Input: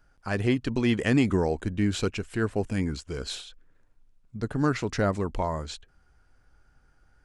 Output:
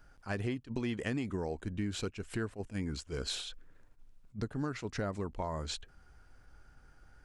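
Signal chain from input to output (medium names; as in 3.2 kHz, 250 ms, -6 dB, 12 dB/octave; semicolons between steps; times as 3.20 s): compression 6:1, threshold -36 dBFS, peak gain reduction 17.5 dB; attacks held to a fixed rise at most 330 dB/s; trim +3 dB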